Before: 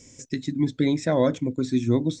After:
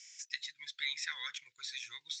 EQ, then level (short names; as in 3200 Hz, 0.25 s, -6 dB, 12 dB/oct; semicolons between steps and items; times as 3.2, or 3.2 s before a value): inverse Chebyshev high-pass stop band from 680 Hz, stop band 50 dB; LPF 6100 Hz 24 dB/oct; +1.5 dB